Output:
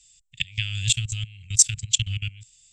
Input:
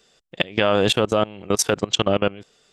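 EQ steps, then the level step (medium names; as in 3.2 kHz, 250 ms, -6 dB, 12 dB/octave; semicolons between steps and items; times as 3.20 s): elliptic band-stop 120–2400 Hz, stop band 40 dB; resonant low-pass 7.6 kHz, resonance Q 8.1; bass shelf 130 Hz +11.5 dB; -3.5 dB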